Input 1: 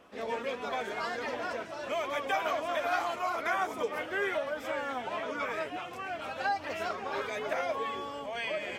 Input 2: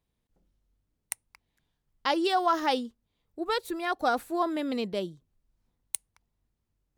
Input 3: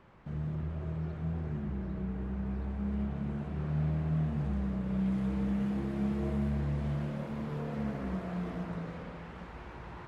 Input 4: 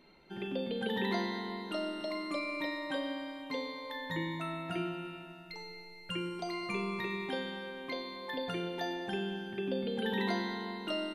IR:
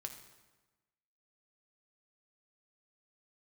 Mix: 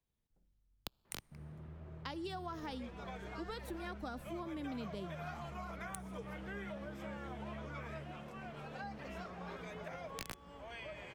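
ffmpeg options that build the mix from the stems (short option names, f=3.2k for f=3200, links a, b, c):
-filter_complex "[0:a]adelay=2350,volume=-13dB[a];[1:a]asubboost=boost=6.5:cutoff=230,volume=-10dB,asplit=2[b][c];[c]volume=-9.5dB[d];[2:a]adelay=1050,volume=-13.5dB,asplit=2[e][f];[f]volume=-6dB[g];[3:a]acrusher=bits=3:mix=0:aa=0.000001,volume=3dB,asplit=2[h][i];[i]volume=-23.5dB[j];[4:a]atrim=start_sample=2205[k];[d][g][j]amix=inputs=3:normalize=0[l];[l][k]afir=irnorm=-1:irlink=0[m];[a][b][e][h][m]amix=inputs=5:normalize=0,acrossover=split=110|250[n][o][p];[n]acompressor=threshold=-51dB:ratio=4[q];[o]acompressor=threshold=-56dB:ratio=4[r];[p]acompressor=threshold=-43dB:ratio=4[s];[q][r][s]amix=inputs=3:normalize=0"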